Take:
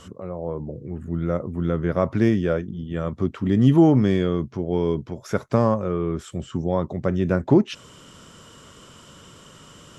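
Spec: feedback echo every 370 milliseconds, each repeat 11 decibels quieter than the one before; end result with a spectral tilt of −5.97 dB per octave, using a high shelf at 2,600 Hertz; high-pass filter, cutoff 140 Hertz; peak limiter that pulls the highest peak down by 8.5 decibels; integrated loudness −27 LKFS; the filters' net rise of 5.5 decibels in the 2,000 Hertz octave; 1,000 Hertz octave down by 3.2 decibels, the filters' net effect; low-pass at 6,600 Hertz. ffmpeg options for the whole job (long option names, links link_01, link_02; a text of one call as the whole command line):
ffmpeg -i in.wav -af "highpass=140,lowpass=6600,equalizer=frequency=1000:width_type=o:gain=-7.5,equalizer=frequency=2000:width_type=o:gain=6.5,highshelf=frequency=2600:gain=8,alimiter=limit=-14dB:level=0:latency=1,aecho=1:1:370|740|1110:0.282|0.0789|0.0221,volume=-0.5dB" out.wav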